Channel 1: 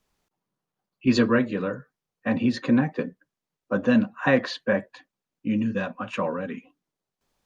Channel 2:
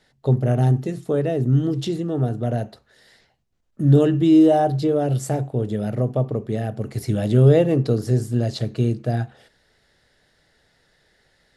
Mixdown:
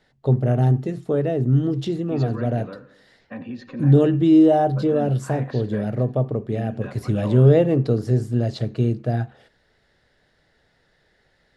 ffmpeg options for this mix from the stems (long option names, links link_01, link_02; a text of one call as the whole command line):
ffmpeg -i stem1.wav -i stem2.wav -filter_complex "[0:a]alimiter=limit=-16dB:level=0:latency=1:release=24,adelay=1050,volume=-9dB,asplit=2[link_01][link_02];[link_02]volume=-15dB[link_03];[1:a]volume=0dB[link_04];[link_03]aecho=0:1:91|182|273|364|455|546|637:1|0.51|0.26|0.133|0.0677|0.0345|0.0176[link_05];[link_01][link_04][link_05]amix=inputs=3:normalize=0,lowpass=frequency=3100:poles=1" out.wav